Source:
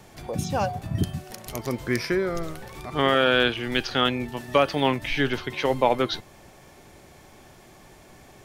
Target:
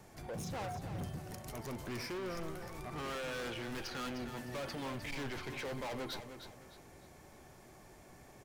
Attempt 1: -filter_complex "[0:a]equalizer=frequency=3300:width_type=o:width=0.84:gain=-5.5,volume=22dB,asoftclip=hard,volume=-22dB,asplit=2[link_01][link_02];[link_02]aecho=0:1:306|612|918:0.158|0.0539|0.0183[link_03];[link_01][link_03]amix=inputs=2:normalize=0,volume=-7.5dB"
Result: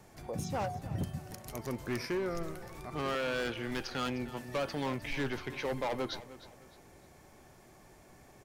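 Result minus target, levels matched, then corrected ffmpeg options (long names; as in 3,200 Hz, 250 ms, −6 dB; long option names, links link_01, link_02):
echo-to-direct −6.5 dB; gain into a clipping stage and back: distortion −5 dB
-filter_complex "[0:a]equalizer=frequency=3300:width_type=o:width=0.84:gain=-5.5,volume=31.5dB,asoftclip=hard,volume=-31.5dB,asplit=2[link_01][link_02];[link_02]aecho=0:1:306|612|918|1224:0.335|0.114|0.0387|0.0132[link_03];[link_01][link_03]amix=inputs=2:normalize=0,volume=-7.5dB"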